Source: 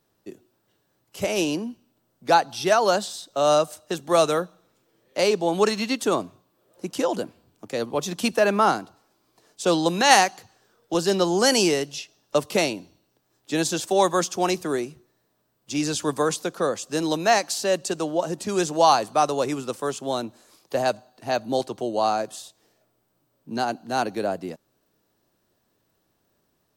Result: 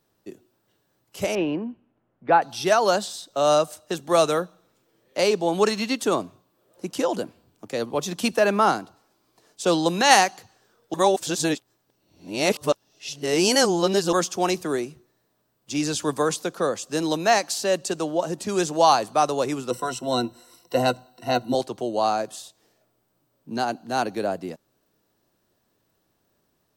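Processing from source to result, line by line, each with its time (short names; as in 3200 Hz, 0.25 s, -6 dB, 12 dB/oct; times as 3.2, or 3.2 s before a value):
1.35–2.42 LPF 2400 Hz 24 dB/oct
10.94–14.13 reverse
19.7–21.55 ripple EQ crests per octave 2, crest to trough 16 dB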